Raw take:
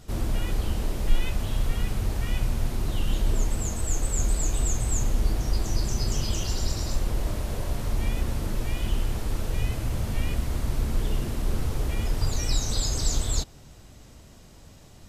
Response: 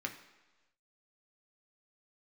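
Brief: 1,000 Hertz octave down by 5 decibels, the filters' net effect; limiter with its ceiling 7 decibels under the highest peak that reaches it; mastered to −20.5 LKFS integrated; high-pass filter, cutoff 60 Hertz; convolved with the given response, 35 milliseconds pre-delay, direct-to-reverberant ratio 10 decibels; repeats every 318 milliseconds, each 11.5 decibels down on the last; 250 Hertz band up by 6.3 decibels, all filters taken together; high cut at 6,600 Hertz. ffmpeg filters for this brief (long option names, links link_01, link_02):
-filter_complex "[0:a]highpass=60,lowpass=6600,equalizer=frequency=250:width_type=o:gain=8.5,equalizer=frequency=1000:width_type=o:gain=-7.5,alimiter=limit=-22.5dB:level=0:latency=1,aecho=1:1:318|636|954:0.266|0.0718|0.0194,asplit=2[link_01][link_02];[1:a]atrim=start_sample=2205,adelay=35[link_03];[link_02][link_03]afir=irnorm=-1:irlink=0,volume=-11.5dB[link_04];[link_01][link_04]amix=inputs=2:normalize=0,volume=11.5dB"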